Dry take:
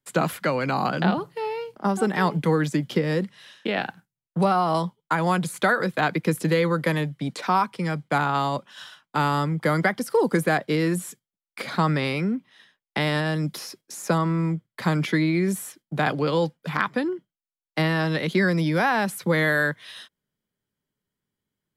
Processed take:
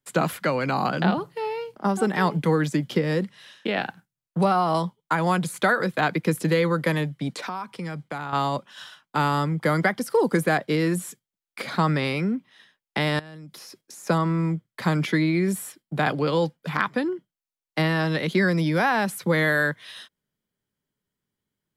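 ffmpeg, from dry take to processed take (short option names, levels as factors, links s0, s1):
-filter_complex "[0:a]asettb=1/sr,asplit=3[s0][s1][s2];[s0]atrim=end=7.454[s3];[s1]atrim=start=7.45:end=8.33,asetpts=PTS-STARTPTS,afade=t=in:d=0.004:c=qsin,afade=t=out:st=0.876:d=0.004:c=qsin,acompressor=threshold=0.0355:ratio=4:attack=3.2:release=140:knee=1:detection=peak[s4];[s2]atrim=start=8.326[s5];[s3][s4]acrossfade=d=0.004:c1=hsin:c2=qsin[s6];[s6][s5]acrossfade=d=0.004:c1=qsin:c2=hsin,asettb=1/sr,asplit=3[s7][s8][s9];[s7]atrim=end=13.194[s10];[s8]atrim=start=13.19:end=14.07,asetpts=PTS-STARTPTS,afade=t=in:d=0.004:c=qsin,afade=t=out:st=0.876:d=0.004:c=qsin,acompressor=threshold=0.0112:ratio=10:attack=3.2:release=140:knee=1:detection=peak[s11];[s9]atrim=start=14.066[s12];[s10][s11]acrossfade=d=0.004:c1=hsin:c2=qsin[s13];[s13][s12]acrossfade=d=0.004:c1=qsin:c2=hsin,asettb=1/sr,asplit=3[s14][s15][s16];[s14]atrim=end=15.334[s17];[s15]atrim=start=15.33:end=16.35,asetpts=PTS-STARTPTS,afade=t=in:d=0.004:c=qsin,afade=t=out:st=1.016:d=0.004:c=qsin,bandreject=f=6200:w=10[s18];[s16]atrim=start=16.346[s19];[s17][s18]acrossfade=d=0.004:c1=hsin:c2=qsin[s20];[s20][s19]acrossfade=d=0.004:c1=qsin:c2=hsin"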